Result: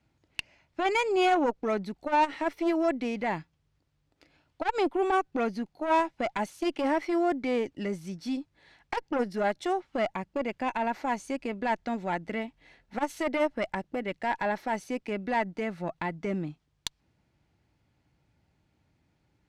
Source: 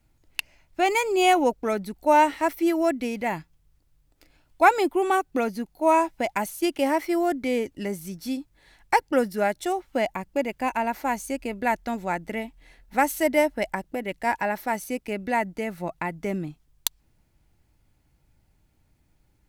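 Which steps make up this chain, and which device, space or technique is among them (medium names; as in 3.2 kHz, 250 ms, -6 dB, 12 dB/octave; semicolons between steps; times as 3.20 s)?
valve radio (band-pass 89–5100 Hz; valve stage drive 16 dB, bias 0.35; transformer saturation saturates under 450 Hz)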